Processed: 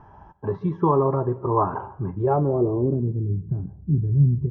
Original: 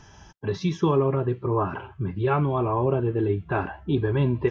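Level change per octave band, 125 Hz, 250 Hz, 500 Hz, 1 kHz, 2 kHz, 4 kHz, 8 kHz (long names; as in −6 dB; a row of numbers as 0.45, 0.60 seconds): +3.5 dB, +1.0 dB, +0.5 dB, +2.5 dB, −13.0 dB, below −20 dB, can't be measured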